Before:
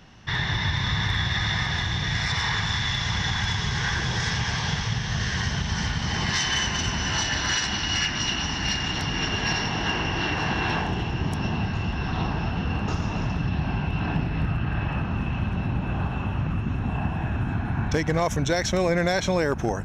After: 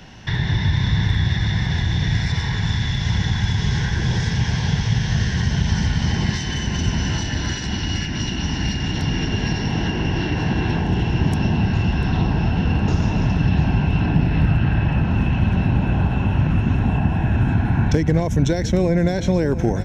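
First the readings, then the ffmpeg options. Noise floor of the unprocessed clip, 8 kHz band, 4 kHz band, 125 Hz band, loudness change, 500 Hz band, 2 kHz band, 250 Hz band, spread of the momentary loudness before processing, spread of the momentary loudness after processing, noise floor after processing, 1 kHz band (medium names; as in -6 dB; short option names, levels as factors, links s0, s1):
-29 dBFS, -2.5 dB, -2.0 dB, +8.5 dB, +5.0 dB, +3.0 dB, -1.5 dB, +8.0 dB, 4 LU, 4 LU, -25 dBFS, 0.0 dB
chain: -filter_complex "[0:a]bandreject=f=1200:w=5.1,aecho=1:1:694:0.15,acrossover=split=400[s0][s1];[s1]acompressor=threshold=0.0141:ratio=6[s2];[s0][s2]amix=inputs=2:normalize=0,volume=2.66"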